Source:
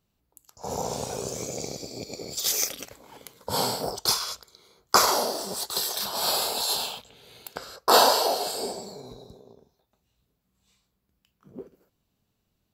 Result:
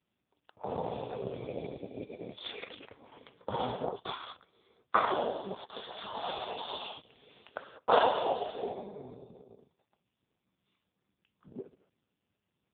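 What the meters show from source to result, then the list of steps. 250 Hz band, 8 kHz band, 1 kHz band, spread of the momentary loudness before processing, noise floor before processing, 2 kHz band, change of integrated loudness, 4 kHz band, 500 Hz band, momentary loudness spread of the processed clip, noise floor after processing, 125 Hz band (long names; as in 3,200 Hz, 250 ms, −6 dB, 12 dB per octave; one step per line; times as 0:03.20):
−5.0 dB, below −40 dB, −6.5 dB, 20 LU, −77 dBFS, −7.0 dB, −9.5 dB, −15.5 dB, −5.0 dB, 20 LU, −84 dBFS, −5.5 dB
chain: level −1.5 dB
AMR narrowband 4.75 kbit/s 8,000 Hz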